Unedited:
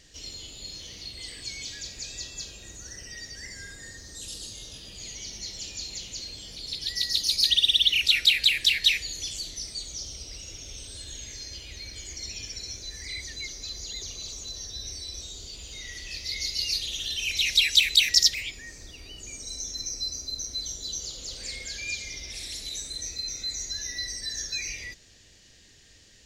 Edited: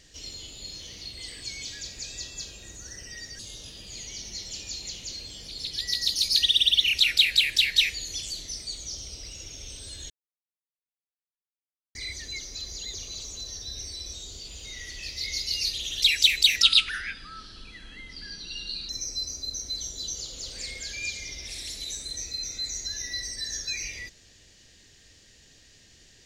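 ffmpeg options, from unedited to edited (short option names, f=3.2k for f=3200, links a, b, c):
-filter_complex "[0:a]asplit=7[a][b][c][d][e][f][g];[a]atrim=end=3.392[h];[b]atrim=start=4.468:end=11.18,asetpts=PTS-STARTPTS,afade=t=out:st=6.708:d=0.004:c=hsin[i];[c]atrim=start=11.18:end=13.03,asetpts=PTS-STARTPTS,volume=0[j];[d]atrim=start=13.03:end=17.102,asetpts=PTS-STARTPTS,afade=t=in:d=0.004:c=hsin[k];[e]atrim=start=17.548:end=18.154[l];[f]atrim=start=18.15:end=19.74,asetpts=PTS-STARTPTS,asetrate=30870,aresample=44100[m];[g]atrim=start=19.736[n];[i][j][k]concat=n=3:v=0:a=1[o];[h][o]acrossfade=d=0.004:c1=hsin:c2=hsin[p];[p][l]acrossfade=d=0.004:c1=hsin:c2=hsin[q];[q][m]acrossfade=d=0.004:c1=hsin:c2=hsin[r];[r][n]acrossfade=d=0.004:c1=hsin:c2=hsin"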